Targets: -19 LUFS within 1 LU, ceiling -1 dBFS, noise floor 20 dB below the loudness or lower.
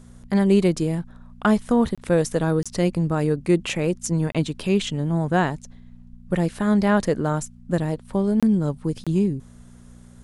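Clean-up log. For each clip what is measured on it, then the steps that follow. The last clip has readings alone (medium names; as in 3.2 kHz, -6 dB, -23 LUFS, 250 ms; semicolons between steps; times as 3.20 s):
dropouts 5; longest dropout 26 ms; hum 60 Hz; highest harmonic 240 Hz; hum level -45 dBFS; loudness -22.5 LUFS; peak level -7.0 dBFS; loudness target -19.0 LUFS
-> interpolate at 1.95/2.63/4.32/8.40/9.04 s, 26 ms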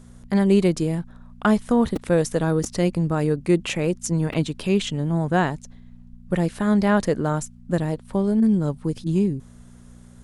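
dropouts 0; hum 60 Hz; highest harmonic 240 Hz; hum level -44 dBFS
-> de-hum 60 Hz, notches 4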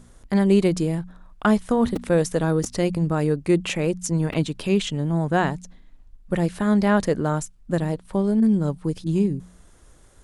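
hum not found; loudness -22.5 LUFS; peak level -7.0 dBFS; loudness target -19.0 LUFS
-> trim +3.5 dB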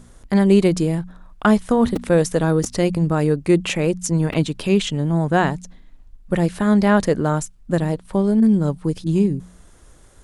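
loudness -19.0 LUFS; peak level -3.5 dBFS; noise floor -48 dBFS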